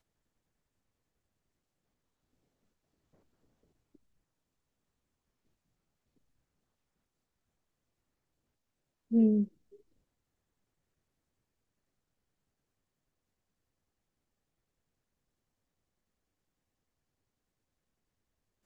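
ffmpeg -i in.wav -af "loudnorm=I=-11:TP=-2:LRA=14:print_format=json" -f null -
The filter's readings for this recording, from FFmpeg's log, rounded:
"input_i" : "-28.6",
"input_tp" : "-16.8",
"input_lra" : "0.0",
"input_thresh" : "-40.2",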